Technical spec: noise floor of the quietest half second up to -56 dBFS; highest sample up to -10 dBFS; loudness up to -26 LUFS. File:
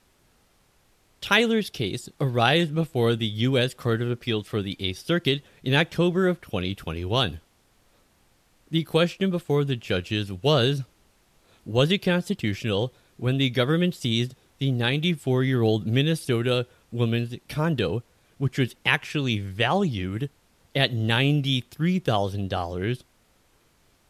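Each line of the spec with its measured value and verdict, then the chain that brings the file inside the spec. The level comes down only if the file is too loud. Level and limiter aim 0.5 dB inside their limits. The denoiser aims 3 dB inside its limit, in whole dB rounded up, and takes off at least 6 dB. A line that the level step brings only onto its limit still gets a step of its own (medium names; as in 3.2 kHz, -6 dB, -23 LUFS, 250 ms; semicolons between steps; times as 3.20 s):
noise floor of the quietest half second -63 dBFS: pass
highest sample -5.0 dBFS: fail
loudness -25.0 LUFS: fail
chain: trim -1.5 dB; peak limiter -10.5 dBFS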